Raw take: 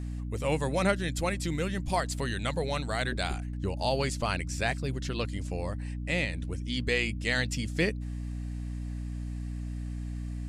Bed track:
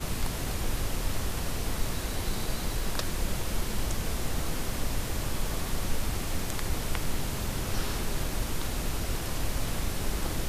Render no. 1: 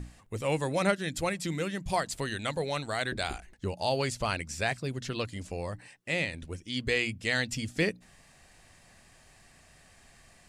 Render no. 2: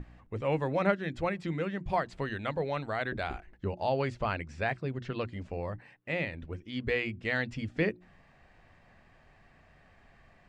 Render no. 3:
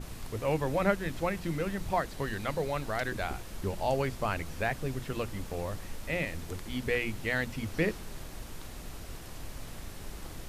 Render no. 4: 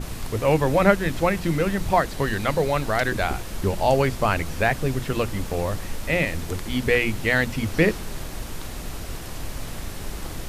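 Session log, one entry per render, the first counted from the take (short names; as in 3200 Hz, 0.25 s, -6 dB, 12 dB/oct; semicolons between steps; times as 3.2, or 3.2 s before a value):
notches 60/120/180/240/300 Hz
LPF 2100 Hz 12 dB/oct; notches 60/120/180/240/300/360 Hz
add bed track -12 dB
gain +10 dB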